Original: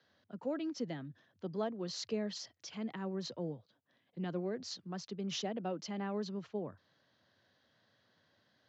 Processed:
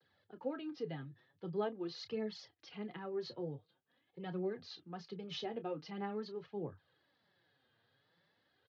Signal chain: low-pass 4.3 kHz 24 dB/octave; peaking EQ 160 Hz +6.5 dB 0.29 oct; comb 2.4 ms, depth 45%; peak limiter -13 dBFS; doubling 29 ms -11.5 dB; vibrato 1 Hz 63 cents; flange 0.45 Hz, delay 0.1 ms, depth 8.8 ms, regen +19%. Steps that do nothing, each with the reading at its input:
peak limiter -13 dBFS: peak at its input -24.5 dBFS

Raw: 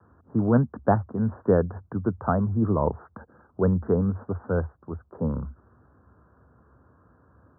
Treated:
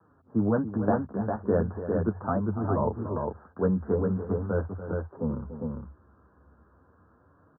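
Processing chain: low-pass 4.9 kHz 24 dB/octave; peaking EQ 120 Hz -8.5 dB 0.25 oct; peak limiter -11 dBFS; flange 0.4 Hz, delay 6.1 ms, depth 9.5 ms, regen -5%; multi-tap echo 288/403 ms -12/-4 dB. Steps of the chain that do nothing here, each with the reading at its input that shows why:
low-pass 4.9 kHz: input has nothing above 1.4 kHz

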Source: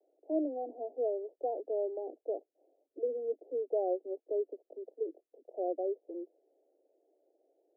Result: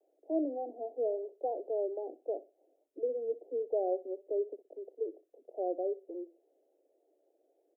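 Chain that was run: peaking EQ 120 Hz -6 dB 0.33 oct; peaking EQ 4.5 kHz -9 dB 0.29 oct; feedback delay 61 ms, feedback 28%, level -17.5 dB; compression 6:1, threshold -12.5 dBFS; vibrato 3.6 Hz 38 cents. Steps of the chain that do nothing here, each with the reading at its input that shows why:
peaking EQ 120 Hz: input has nothing below 230 Hz; peaking EQ 4.5 kHz: input has nothing above 850 Hz; compression, threshold -12.5 dBFS: peak at its input -21.0 dBFS

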